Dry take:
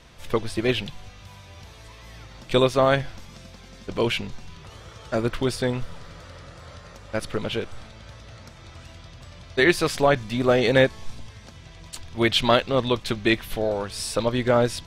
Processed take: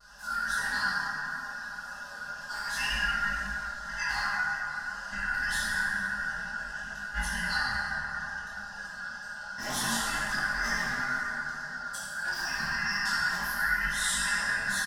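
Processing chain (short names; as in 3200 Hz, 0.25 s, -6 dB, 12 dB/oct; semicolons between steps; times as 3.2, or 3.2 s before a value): four-band scrambler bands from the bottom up 2143; wow and flutter 120 cents; fixed phaser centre 940 Hz, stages 4; comb 4.9 ms, depth 100%; wavefolder -18.5 dBFS; dynamic EQ 580 Hz, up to -7 dB, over -50 dBFS, Q 2.1; negative-ratio compressor -29 dBFS, ratio -0.5; plate-style reverb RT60 4.2 s, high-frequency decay 0.35×, DRR -8.5 dB; detuned doubles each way 10 cents; gain -4 dB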